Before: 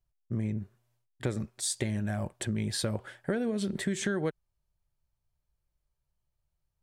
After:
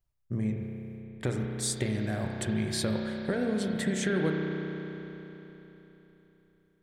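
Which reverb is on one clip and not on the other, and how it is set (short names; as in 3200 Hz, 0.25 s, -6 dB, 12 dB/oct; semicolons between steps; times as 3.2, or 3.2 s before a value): spring tank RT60 3.7 s, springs 32 ms, chirp 60 ms, DRR 0.5 dB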